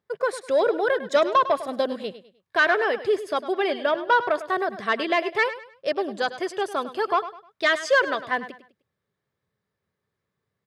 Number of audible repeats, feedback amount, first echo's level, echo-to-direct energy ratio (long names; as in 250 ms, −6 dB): 3, 32%, −13.5 dB, −13.0 dB